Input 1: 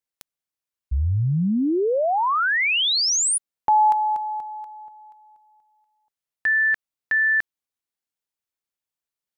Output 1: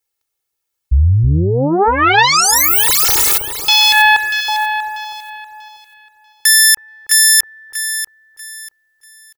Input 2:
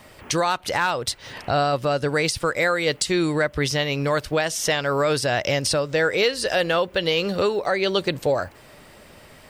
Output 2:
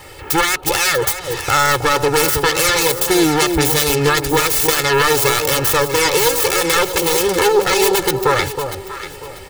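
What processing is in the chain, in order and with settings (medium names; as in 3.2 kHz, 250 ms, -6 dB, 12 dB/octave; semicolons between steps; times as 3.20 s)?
self-modulated delay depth 0.93 ms; treble shelf 7.3 kHz +5.5 dB; comb 2.3 ms, depth 97%; peak limiter -12.5 dBFS; echo whose repeats swap between lows and highs 320 ms, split 1 kHz, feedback 52%, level -5.5 dB; trim +7 dB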